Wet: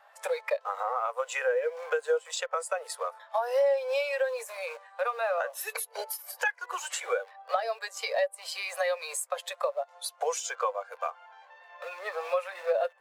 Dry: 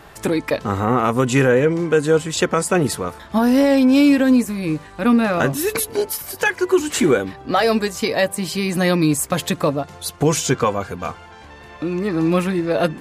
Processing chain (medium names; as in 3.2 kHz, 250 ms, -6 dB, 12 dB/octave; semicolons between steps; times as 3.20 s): in parallel at -11 dB: bit crusher 4-bit; on the sum: steep high-pass 500 Hz 72 dB/octave; Chebyshev shaper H 3 -16 dB, 4 -43 dB, 5 -32 dB, 6 -45 dB, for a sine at -3.5 dBFS; compression 6:1, threshold -29 dBFS, peak gain reduction 15 dB; spectral contrast expander 1.5:1